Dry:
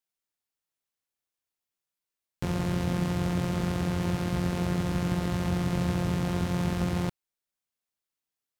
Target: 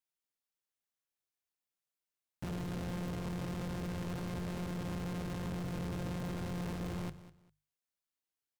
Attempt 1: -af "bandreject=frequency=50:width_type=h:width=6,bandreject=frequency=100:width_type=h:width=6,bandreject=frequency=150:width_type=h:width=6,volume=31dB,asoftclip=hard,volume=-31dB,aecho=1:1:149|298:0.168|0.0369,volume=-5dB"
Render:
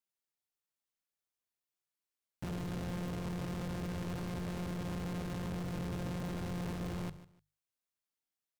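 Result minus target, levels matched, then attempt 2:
echo 51 ms early
-af "bandreject=frequency=50:width_type=h:width=6,bandreject=frequency=100:width_type=h:width=6,bandreject=frequency=150:width_type=h:width=6,volume=31dB,asoftclip=hard,volume=-31dB,aecho=1:1:200|400:0.168|0.0369,volume=-5dB"

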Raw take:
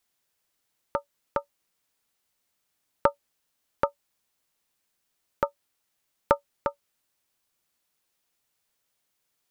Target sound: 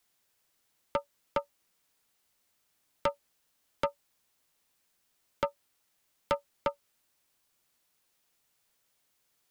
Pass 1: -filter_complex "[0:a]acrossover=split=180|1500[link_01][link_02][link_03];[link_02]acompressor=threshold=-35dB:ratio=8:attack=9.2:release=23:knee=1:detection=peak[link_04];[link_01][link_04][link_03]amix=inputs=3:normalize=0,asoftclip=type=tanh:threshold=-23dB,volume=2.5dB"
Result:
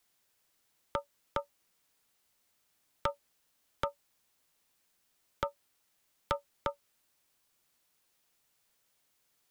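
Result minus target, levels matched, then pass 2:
downward compressor: peak gain reduction +9.5 dB
-filter_complex "[0:a]acrossover=split=180|1500[link_01][link_02][link_03];[link_02]acompressor=threshold=-24dB:ratio=8:attack=9.2:release=23:knee=1:detection=peak[link_04];[link_01][link_04][link_03]amix=inputs=3:normalize=0,asoftclip=type=tanh:threshold=-23dB,volume=2.5dB"

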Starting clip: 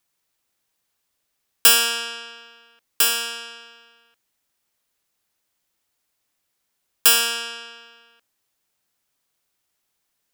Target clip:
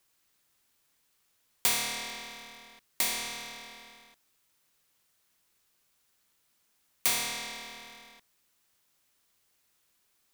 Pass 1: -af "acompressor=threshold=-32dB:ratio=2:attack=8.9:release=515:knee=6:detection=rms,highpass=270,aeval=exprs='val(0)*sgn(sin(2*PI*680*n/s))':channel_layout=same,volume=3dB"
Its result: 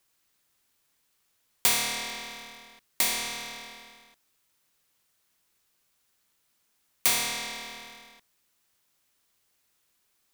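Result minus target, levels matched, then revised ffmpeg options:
downward compressor: peak gain reduction −3.5 dB
-af "acompressor=threshold=-39dB:ratio=2:attack=8.9:release=515:knee=6:detection=rms,highpass=270,aeval=exprs='val(0)*sgn(sin(2*PI*680*n/s))':channel_layout=same,volume=3dB"

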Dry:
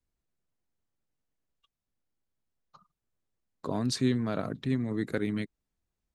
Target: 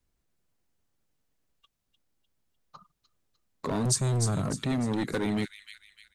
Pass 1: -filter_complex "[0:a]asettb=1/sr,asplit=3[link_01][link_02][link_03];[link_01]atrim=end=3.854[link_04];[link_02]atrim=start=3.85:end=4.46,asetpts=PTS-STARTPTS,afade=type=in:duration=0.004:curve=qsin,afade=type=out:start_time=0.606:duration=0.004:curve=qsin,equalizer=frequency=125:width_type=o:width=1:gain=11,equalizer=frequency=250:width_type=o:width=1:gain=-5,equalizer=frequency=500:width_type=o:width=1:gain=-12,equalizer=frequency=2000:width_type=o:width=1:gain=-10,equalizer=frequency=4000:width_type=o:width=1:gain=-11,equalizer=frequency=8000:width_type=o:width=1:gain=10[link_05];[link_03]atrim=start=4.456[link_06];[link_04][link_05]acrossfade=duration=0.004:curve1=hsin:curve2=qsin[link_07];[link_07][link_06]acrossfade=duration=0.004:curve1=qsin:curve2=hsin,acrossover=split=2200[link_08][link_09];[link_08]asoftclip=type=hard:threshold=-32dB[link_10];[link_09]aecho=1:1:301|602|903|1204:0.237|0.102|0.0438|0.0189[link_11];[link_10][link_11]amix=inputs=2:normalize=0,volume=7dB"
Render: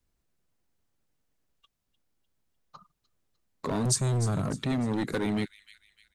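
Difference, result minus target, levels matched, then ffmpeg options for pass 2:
echo-to-direct −6.5 dB
-filter_complex "[0:a]asettb=1/sr,asplit=3[link_01][link_02][link_03];[link_01]atrim=end=3.854[link_04];[link_02]atrim=start=3.85:end=4.46,asetpts=PTS-STARTPTS,afade=type=in:duration=0.004:curve=qsin,afade=type=out:start_time=0.606:duration=0.004:curve=qsin,equalizer=frequency=125:width_type=o:width=1:gain=11,equalizer=frequency=250:width_type=o:width=1:gain=-5,equalizer=frequency=500:width_type=o:width=1:gain=-12,equalizer=frequency=2000:width_type=o:width=1:gain=-10,equalizer=frequency=4000:width_type=o:width=1:gain=-11,equalizer=frequency=8000:width_type=o:width=1:gain=10[link_05];[link_03]atrim=start=4.456[link_06];[link_04][link_05]acrossfade=duration=0.004:curve1=hsin:curve2=qsin[link_07];[link_07][link_06]acrossfade=duration=0.004:curve1=qsin:curve2=hsin,acrossover=split=2200[link_08][link_09];[link_08]asoftclip=type=hard:threshold=-32dB[link_10];[link_09]aecho=1:1:301|602|903|1204|1505:0.501|0.216|0.0927|0.0398|0.0171[link_11];[link_10][link_11]amix=inputs=2:normalize=0,volume=7dB"

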